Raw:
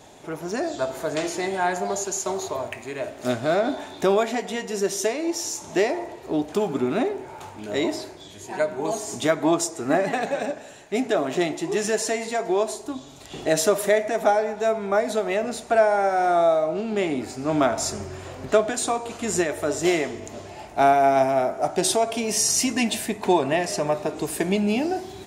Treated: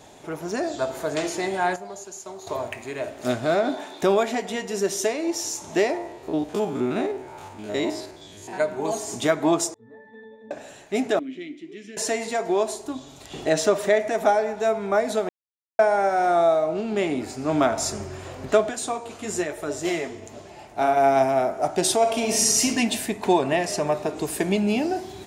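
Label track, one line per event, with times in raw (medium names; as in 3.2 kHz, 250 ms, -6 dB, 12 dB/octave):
1.760000	2.470000	gain -11 dB
3.550000	4.010000	high-pass 84 Hz -> 330 Hz
5.970000	8.600000	spectrogram pixelated in time every 50 ms
9.740000	10.510000	pitch-class resonator A, decay 0.68 s
11.190000	11.970000	vowel filter i
13.490000	14.000000	peaking EQ 12 kHz -14.5 dB 0.68 oct
15.290000	15.790000	mute
18.690000	20.970000	flange 1.1 Hz, delay 4.7 ms, depth 7.8 ms, regen -51%
21.970000	22.660000	reverb throw, RT60 1 s, DRR 2 dB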